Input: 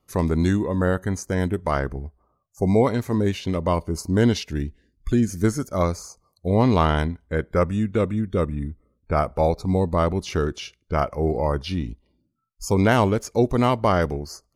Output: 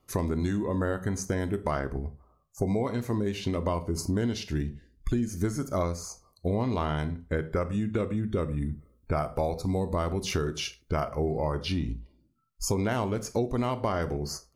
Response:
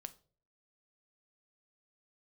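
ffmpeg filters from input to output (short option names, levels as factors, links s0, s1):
-filter_complex "[0:a]asettb=1/sr,asplit=3[s0][s1][s2];[s0]atrim=end=8.464[s3];[s1]atrim=start=8.46:end=11.11,asetpts=PTS-STARTPTS,afade=t=in:d=0.004:c=qsin,afade=t=out:st=2.646:d=0.004:c=qsin,highshelf=f=9000:g=10.5[s4];[s2]atrim=start=11.106[s5];[s3][s4]acrossfade=d=0.004:c1=hsin:c2=qsin[s6];[s6][s5]acrossfade=d=0.004:c1=qsin:c2=hsin[s7];[1:a]atrim=start_sample=2205,atrim=end_sample=6174[s8];[s7][s8]afir=irnorm=-1:irlink=0,acompressor=threshold=0.0251:ratio=6,volume=2.24"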